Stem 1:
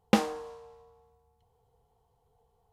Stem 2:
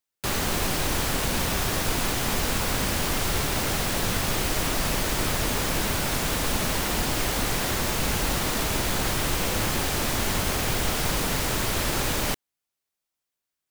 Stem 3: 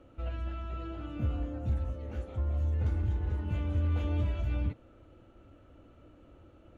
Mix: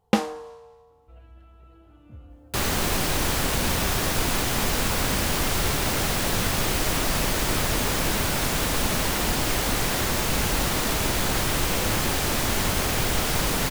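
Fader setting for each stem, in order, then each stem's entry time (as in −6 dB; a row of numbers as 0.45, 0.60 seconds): +2.5, +1.5, −13.5 decibels; 0.00, 2.30, 0.90 seconds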